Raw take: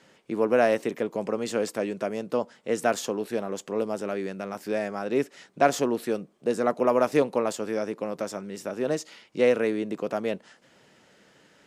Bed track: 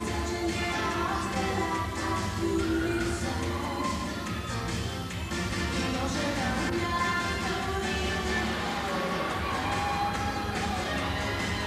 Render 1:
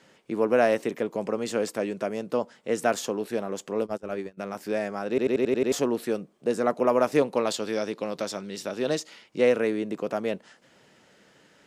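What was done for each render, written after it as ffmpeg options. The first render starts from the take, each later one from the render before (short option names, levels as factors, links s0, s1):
-filter_complex "[0:a]asplit=3[s0][s1][s2];[s0]afade=t=out:st=3.81:d=0.02[s3];[s1]agate=range=0.0631:threshold=0.0282:ratio=16:release=100:detection=peak,afade=t=in:st=3.81:d=0.02,afade=t=out:st=4.37:d=0.02[s4];[s2]afade=t=in:st=4.37:d=0.02[s5];[s3][s4][s5]amix=inputs=3:normalize=0,asettb=1/sr,asplit=3[s6][s7][s8];[s6]atrim=end=7.364[s9];[s7]atrim=start=7.36:end=9,asetpts=PTS-STARTPTS,afade=t=in:d=0.004:c=qsin,afade=t=out:st=1.636:d=0.004:c=qsin,equalizer=f=3900:w=1.4:g=11.5[s10];[s8]atrim=start=8.996[s11];[s9][s10]acrossfade=d=0.004:c1=hsin:c2=qsin[s12];[s12][s11]acrossfade=d=0.004:c1=qsin:c2=hsin,asplit=8[s13][s14][s15][s16][s17][s18][s19][s20];[s13]atrim=end=5.182[s21];[s14]atrim=start=5.088:end=5.182[s22];[s15]atrim=start=5.088:end=5.182[s23];[s16]atrim=start=5.088:end=5.182[s24];[s17]atrim=start=5.088:end=5.182[s25];[s18]atrim=start=5.088:end=5.182[s26];[s19]atrim=start=5.088:end=5.182[s27];[s20]atrim=start=5.718[s28];[s21][s22]acrossfade=d=0.004:c1=hsin:c2=hsin[s29];[s29][s23]acrossfade=d=0.004:c1=hsin:c2=hsin[s30];[s30][s24]acrossfade=d=0.004:c1=hsin:c2=hsin[s31];[s31][s25]acrossfade=d=0.004:c1=hsin:c2=hsin[s32];[s32][s26]acrossfade=d=0.004:c1=hsin:c2=hsin[s33];[s33][s27]acrossfade=d=0.004:c1=hsin:c2=hsin[s34];[s34][s28]acrossfade=d=0.004:c1=hsin:c2=hsin"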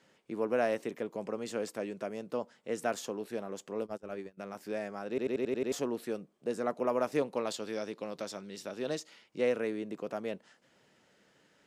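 -af "volume=0.376"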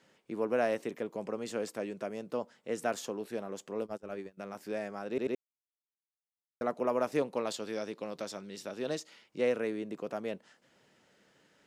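-filter_complex "[0:a]asplit=3[s0][s1][s2];[s0]atrim=end=5.35,asetpts=PTS-STARTPTS,afade=t=out:st=5.346:d=0.004:c=hsin[s3];[s1]atrim=start=5.35:end=6.61,asetpts=PTS-STARTPTS,volume=0[s4];[s2]atrim=start=6.61,asetpts=PTS-STARTPTS,afade=t=in:d=0.004:c=hsin[s5];[s3][s4][s5]concat=n=3:v=0:a=1"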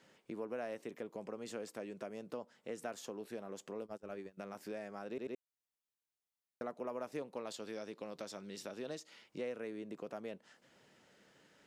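-af "acompressor=threshold=0.00631:ratio=2.5"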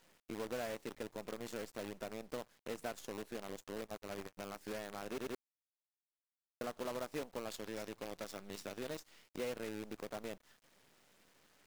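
-af "acrusher=bits=8:dc=4:mix=0:aa=0.000001"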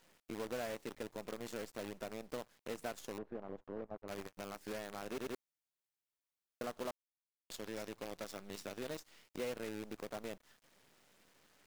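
-filter_complex "[0:a]asettb=1/sr,asplit=3[s0][s1][s2];[s0]atrim=end=3.184[s3];[s1]atrim=start=3.18:end=4.08,asetpts=PTS-STARTPTS,afade=t=in:d=0.004:c=qsin,afade=t=out:st=0.896:d=0.004:c=qsin,lowpass=1100[s4];[s2]atrim=start=4.076[s5];[s3][s4]acrossfade=d=0.004:c1=hsin:c2=qsin[s6];[s6][s5]acrossfade=d=0.004:c1=qsin:c2=hsin,asplit=3[s7][s8][s9];[s7]atrim=end=6.91,asetpts=PTS-STARTPTS,afade=t=out:st=6.906:d=0.004:c=hsin[s10];[s8]atrim=start=6.91:end=7.5,asetpts=PTS-STARTPTS,volume=0[s11];[s9]atrim=start=7.5,asetpts=PTS-STARTPTS,afade=t=in:d=0.004:c=hsin[s12];[s10][s11][s12]concat=n=3:v=0:a=1"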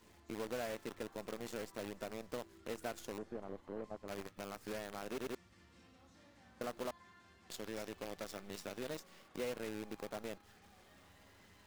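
-filter_complex "[1:a]volume=0.0188[s0];[0:a][s0]amix=inputs=2:normalize=0"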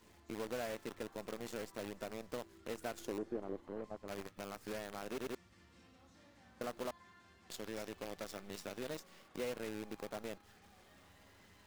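-filter_complex "[0:a]asettb=1/sr,asplit=3[s0][s1][s2];[s0]atrim=end=2.984[s3];[s1]atrim=start=2.98:end=3.68,asetpts=PTS-STARTPTS,afade=t=in:d=0.004:c=qsin,afade=t=out:st=0.696:d=0.004:c=qsin,equalizer=f=340:t=o:w=0.77:g=8[s4];[s2]atrim=start=3.676[s5];[s3][s4]acrossfade=d=0.004:c1=hsin:c2=qsin[s6];[s6][s5]acrossfade=d=0.004:c1=qsin:c2=hsin"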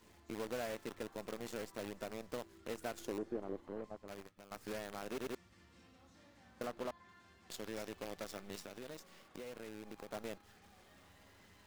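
-filter_complex "[0:a]asettb=1/sr,asplit=3[s0][s1][s2];[s0]atrim=end=6.674[s3];[s1]atrim=start=6.67:end=7.09,asetpts=PTS-STARTPTS,afade=t=in:d=0.004:c=qsin,afade=t=out:st=0.416:d=0.004:c=qsin,highshelf=f=5300:g=-8.5[s4];[s2]atrim=start=7.086[s5];[s3][s4]acrossfade=d=0.004:c1=hsin:c2=qsin[s6];[s6][s5]acrossfade=d=0.004:c1=qsin:c2=hsin,asettb=1/sr,asplit=3[s7][s8][s9];[s7]atrim=end=8.594[s10];[s8]atrim=start=8.59:end=10.1,asetpts=PTS-STARTPTS,afade=t=in:d=0.004:c=qsin,afade=t=out:st=1.506:d=0.004:c=qsin,acompressor=threshold=0.00631:ratio=6:attack=3.2:release=140:knee=1:detection=peak[s11];[s9]atrim=start=10.096[s12];[s10][s11]acrossfade=d=0.004:c1=hsin:c2=qsin[s13];[s13][s12]acrossfade=d=0.004:c1=qsin:c2=hsin,asplit=2[s14][s15];[s14]atrim=end=4.51,asetpts=PTS-STARTPTS,afade=t=out:st=3.74:d=0.77:silence=0.16788[s16];[s15]atrim=start=4.51,asetpts=PTS-STARTPTS,afade=t=in:d=0.004:c=hsin:silence=0.16788[s17];[s16][s17]concat=n=2:v=0:a=1"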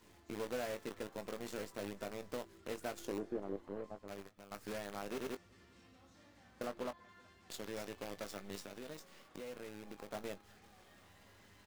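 -filter_complex "[0:a]asplit=2[s0][s1];[s1]adelay=20,volume=0.316[s2];[s0][s2]amix=inputs=2:normalize=0,asplit=2[s3][s4];[s4]adelay=379,volume=0.0355,highshelf=f=4000:g=-8.53[s5];[s3][s5]amix=inputs=2:normalize=0"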